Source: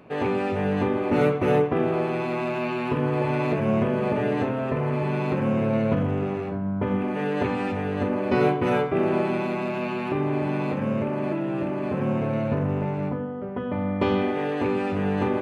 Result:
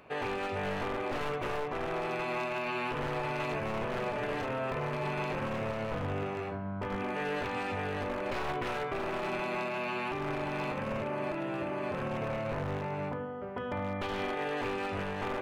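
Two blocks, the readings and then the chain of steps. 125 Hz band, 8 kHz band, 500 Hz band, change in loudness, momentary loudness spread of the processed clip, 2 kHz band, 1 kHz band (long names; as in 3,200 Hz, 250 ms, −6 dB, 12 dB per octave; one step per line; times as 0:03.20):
−12.0 dB, can't be measured, −9.5 dB, −9.5 dB, 2 LU, −3.0 dB, −5.5 dB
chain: wavefolder on the positive side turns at −20 dBFS
parametric band 210 Hz −12 dB 2.4 octaves
brickwall limiter −25.5 dBFS, peak gain reduction 10 dB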